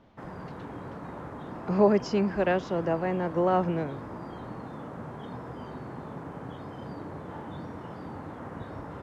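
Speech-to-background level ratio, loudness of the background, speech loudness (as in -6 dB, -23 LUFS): 14.0 dB, -40.5 LUFS, -26.5 LUFS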